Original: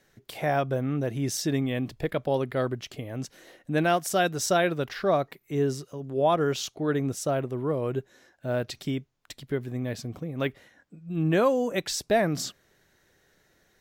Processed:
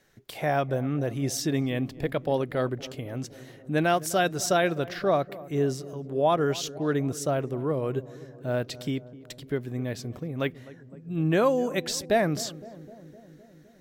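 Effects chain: filtered feedback delay 256 ms, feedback 75%, low-pass 950 Hz, level -17 dB

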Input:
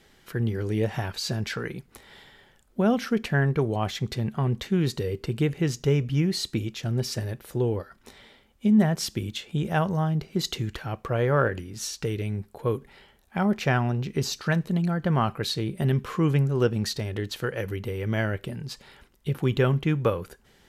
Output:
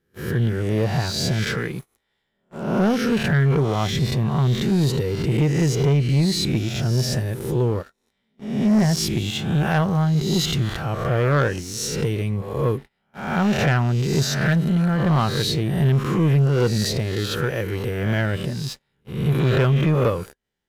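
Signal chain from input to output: reverse spectral sustain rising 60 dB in 0.87 s; band-stop 4.4 kHz, Q 24; gate -38 dBFS, range -18 dB; dynamic bell 140 Hz, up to +5 dB, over -37 dBFS, Q 1.6; waveshaping leveller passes 2; trim -4.5 dB

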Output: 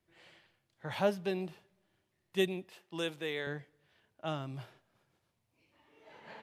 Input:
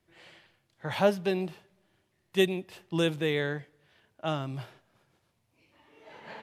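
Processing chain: 2.69–3.47 s: high-pass 470 Hz 6 dB/octave; trim -6 dB

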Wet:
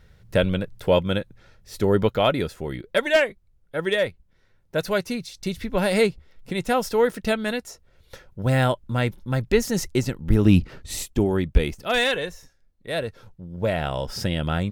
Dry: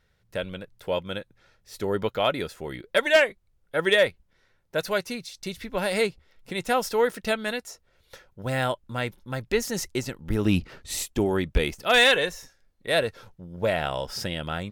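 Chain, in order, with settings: bass shelf 330 Hz +9 dB; gain riding 2 s

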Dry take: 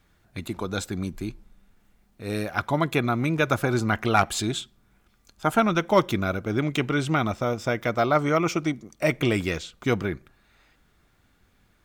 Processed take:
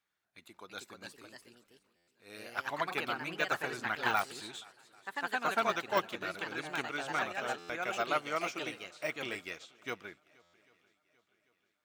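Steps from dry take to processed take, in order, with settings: treble shelf 4.6 kHz -4 dB; shuffle delay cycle 792 ms, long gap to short 1.5:1, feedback 42%, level -20 dB; de-esser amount 75%; ever faster or slower copies 373 ms, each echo +2 st, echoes 2; high-pass 1.4 kHz 6 dB/octave; buffer glitch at 1.96/7.58/10.42 s, samples 512, times 9; upward expansion 1.5:1, over -44 dBFS; trim -3 dB

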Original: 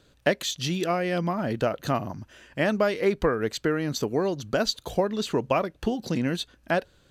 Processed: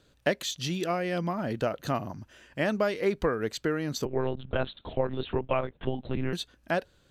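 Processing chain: 4.05–6.33 s: monotone LPC vocoder at 8 kHz 130 Hz; trim -3.5 dB

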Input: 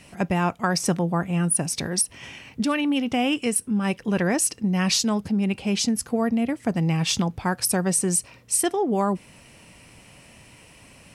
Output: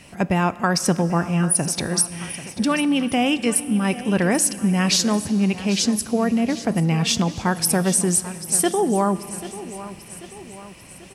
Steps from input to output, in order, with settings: on a send: feedback delay 789 ms, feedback 51%, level -15 dB; on the sum: Schroeder reverb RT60 3.2 s, combs from 26 ms, DRR 16 dB; trim +3 dB

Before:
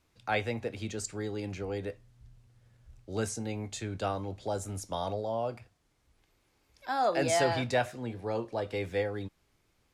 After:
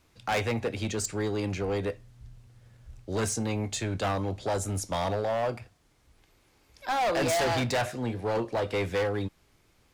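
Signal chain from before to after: overload inside the chain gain 31 dB; trim +7 dB

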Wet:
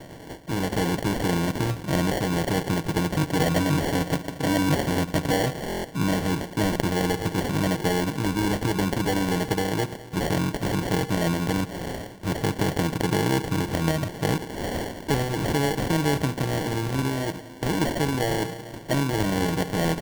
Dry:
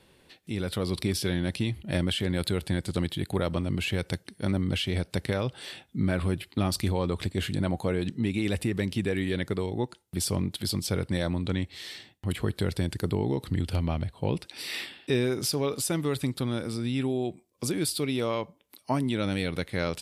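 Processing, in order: spectral levelling over time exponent 0.6; 3.15–5.54 s: rippled EQ curve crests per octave 1.1, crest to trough 11 dB; spring tank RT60 3 s, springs 35/59 ms, chirp 25 ms, DRR 12.5 dB; vibrato 2 Hz 52 cents; comb 6.5 ms, depth 70%; sample-and-hold 35×; buffer glitch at 5.68 s, samples 1024, times 6; trim -1 dB

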